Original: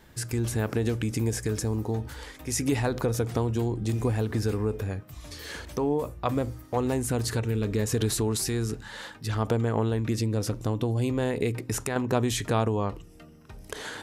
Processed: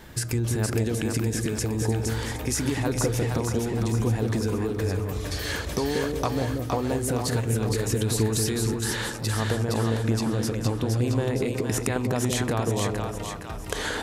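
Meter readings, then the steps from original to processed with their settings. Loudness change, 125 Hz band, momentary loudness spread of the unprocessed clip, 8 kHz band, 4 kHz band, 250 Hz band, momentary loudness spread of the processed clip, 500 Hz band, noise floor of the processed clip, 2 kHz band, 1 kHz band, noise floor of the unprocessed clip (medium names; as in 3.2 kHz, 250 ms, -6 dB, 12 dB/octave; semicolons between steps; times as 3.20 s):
+2.0 dB, +2.5 dB, 10 LU, +4.0 dB, +4.5 dB, +2.0 dB, 4 LU, +1.5 dB, -34 dBFS, +4.5 dB, +1.5 dB, -49 dBFS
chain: compression, threshold -33 dBFS, peak gain reduction 13.5 dB; on a send: two-band feedback delay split 660 Hz, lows 179 ms, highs 465 ms, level -3 dB; on the sum: trim +8.5 dB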